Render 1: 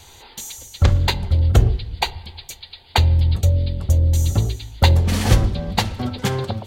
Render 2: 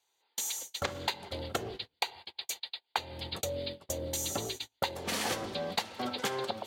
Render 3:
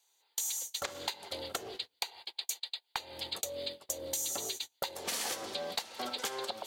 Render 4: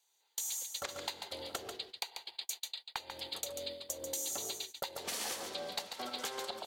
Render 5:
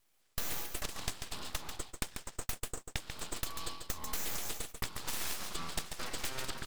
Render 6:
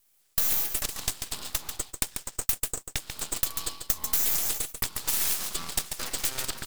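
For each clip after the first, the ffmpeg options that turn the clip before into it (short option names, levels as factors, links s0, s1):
-af "highpass=410,agate=range=0.0282:threshold=0.0126:ratio=16:detection=peak,acompressor=threshold=0.0316:ratio=6"
-af "aeval=exprs='0.237*(cos(1*acos(clip(val(0)/0.237,-1,1)))-cos(1*PI/2))+0.0668*(cos(2*acos(clip(val(0)/0.237,-1,1)))-cos(2*PI/2))':c=same,bass=f=250:g=-13,treble=f=4000:g=8,acompressor=threshold=0.02:ratio=3"
-af "aecho=1:1:141:0.447,volume=0.668"
-af "aeval=exprs='abs(val(0))':c=same,volume=1.58"
-filter_complex "[0:a]crystalizer=i=2:c=0,asplit=2[s0][s1];[s1]acrusher=bits=4:mix=0:aa=0.000001,volume=0.422[s2];[s0][s2]amix=inputs=2:normalize=0"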